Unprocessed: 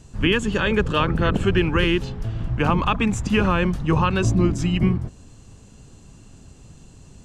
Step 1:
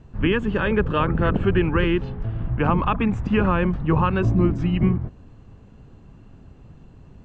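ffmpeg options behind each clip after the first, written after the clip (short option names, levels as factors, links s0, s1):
-af "lowpass=2000"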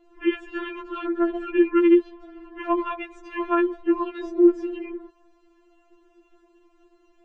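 -af "lowshelf=f=230:t=q:w=1.5:g=-13,afftfilt=real='re*4*eq(mod(b,16),0)':imag='im*4*eq(mod(b,16),0)':win_size=2048:overlap=0.75,volume=0.75"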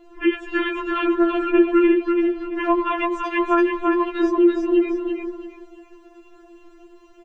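-filter_complex "[0:a]acompressor=threshold=0.0398:ratio=2,asplit=2[s0][s1];[s1]aecho=0:1:336|672|1008|1344:0.631|0.17|0.046|0.0124[s2];[s0][s2]amix=inputs=2:normalize=0,volume=2.82"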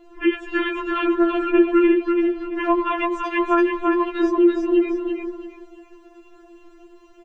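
-af anull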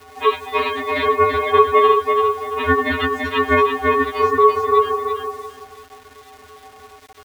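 -af "acrusher=bits=7:mix=0:aa=0.000001,aeval=exprs='val(0)*sin(2*PI*770*n/s)':c=same,volume=1.88"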